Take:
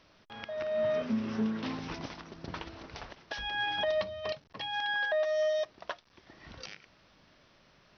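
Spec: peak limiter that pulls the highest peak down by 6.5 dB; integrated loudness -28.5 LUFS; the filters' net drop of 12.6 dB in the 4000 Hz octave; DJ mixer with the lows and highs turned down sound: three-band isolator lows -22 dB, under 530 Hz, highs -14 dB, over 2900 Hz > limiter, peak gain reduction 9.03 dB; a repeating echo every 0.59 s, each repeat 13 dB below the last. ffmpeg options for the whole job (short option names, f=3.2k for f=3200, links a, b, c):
-filter_complex "[0:a]equalizer=f=4k:t=o:g=-8.5,alimiter=level_in=4dB:limit=-24dB:level=0:latency=1,volume=-4dB,acrossover=split=530 2900:gain=0.0794 1 0.2[a][b][c];[a][b][c]amix=inputs=3:normalize=0,aecho=1:1:590|1180|1770:0.224|0.0493|0.0108,volume=17.5dB,alimiter=limit=-20dB:level=0:latency=1"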